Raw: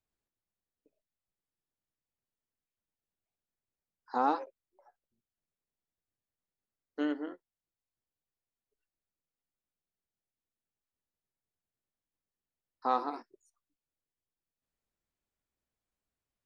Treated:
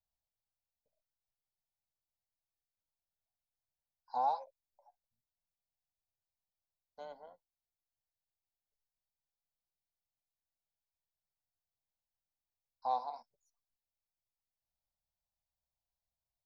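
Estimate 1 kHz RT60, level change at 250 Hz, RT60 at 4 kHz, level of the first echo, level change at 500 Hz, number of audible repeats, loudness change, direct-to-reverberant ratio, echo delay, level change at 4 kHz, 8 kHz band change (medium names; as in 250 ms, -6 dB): no reverb, -27.5 dB, no reverb, no echo, -8.0 dB, no echo, -3.5 dB, no reverb, no echo, -7.0 dB, no reading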